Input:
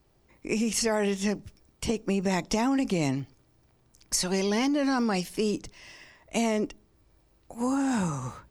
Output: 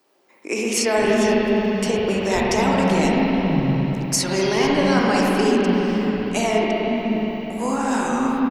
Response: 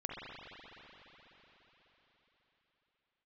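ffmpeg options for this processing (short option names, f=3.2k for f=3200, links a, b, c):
-filter_complex "[0:a]acrossover=split=270[a][b];[a]adelay=520[c];[c][b]amix=inputs=2:normalize=0[d];[1:a]atrim=start_sample=2205[e];[d][e]afir=irnorm=-1:irlink=0,volume=9dB"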